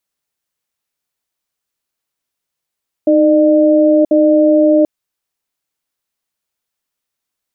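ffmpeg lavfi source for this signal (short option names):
-f lavfi -i "aevalsrc='0.335*(sin(2*PI*310*t)+sin(2*PI*603*t))*clip(min(mod(t,1.04),0.98-mod(t,1.04))/0.005,0,1)':d=1.78:s=44100"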